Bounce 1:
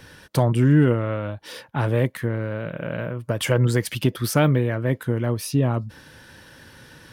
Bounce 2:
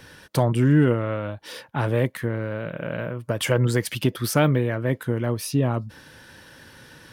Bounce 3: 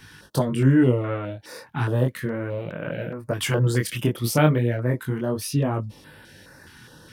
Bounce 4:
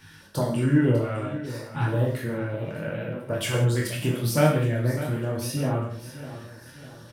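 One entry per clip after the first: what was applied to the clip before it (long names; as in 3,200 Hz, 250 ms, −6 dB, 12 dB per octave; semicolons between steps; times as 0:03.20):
low-shelf EQ 150 Hz −3.5 dB
chorus effect 0.34 Hz, delay 19.5 ms, depth 6.5 ms; notch on a step sequencer 4.8 Hz 560–6,200 Hz; level +3.5 dB
repeating echo 599 ms, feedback 44%, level −13.5 dB; reverb whose tail is shaped and stops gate 210 ms falling, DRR −1.5 dB; level −5.5 dB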